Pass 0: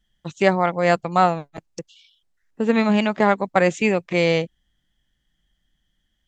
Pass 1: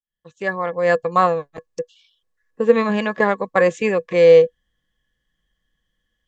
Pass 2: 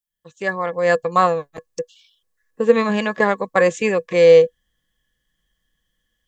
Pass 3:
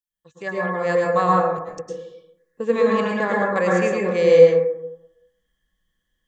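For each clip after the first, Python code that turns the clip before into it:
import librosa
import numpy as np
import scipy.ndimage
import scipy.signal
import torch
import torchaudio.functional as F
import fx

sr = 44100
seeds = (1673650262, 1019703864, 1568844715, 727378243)

y1 = fx.fade_in_head(x, sr, length_s=1.15)
y1 = fx.small_body(y1, sr, hz=(490.0, 1100.0, 1700.0), ring_ms=75, db=17)
y1 = y1 * librosa.db_to_amplitude(-3.5)
y2 = fx.high_shelf(y1, sr, hz=5900.0, db=10.5)
y3 = fx.rev_plate(y2, sr, seeds[0], rt60_s=0.85, hf_ratio=0.3, predelay_ms=95, drr_db=-3.5)
y3 = y3 * librosa.db_to_amplitude(-7.0)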